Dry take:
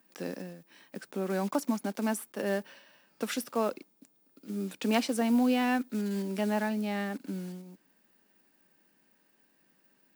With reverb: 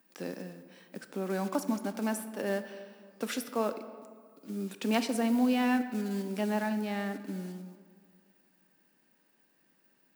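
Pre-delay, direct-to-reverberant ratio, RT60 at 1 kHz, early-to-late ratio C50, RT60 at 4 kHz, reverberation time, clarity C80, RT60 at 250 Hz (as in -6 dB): 20 ms, 10.0 dB, 1.9 s, 11.0 dB, 1.1 s, 2.0 s, 12.5 dB, 2.1 s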